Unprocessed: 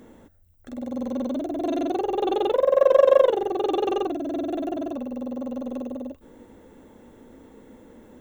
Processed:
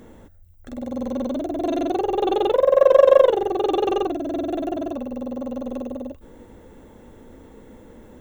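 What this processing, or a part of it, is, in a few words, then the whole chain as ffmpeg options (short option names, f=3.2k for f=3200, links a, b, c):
low shelf boost with a cut just above: -af "lowshelf=f=110:g=8,equalizer=f=260:t=o:w=0.62:g=-3.5,volume=3dB"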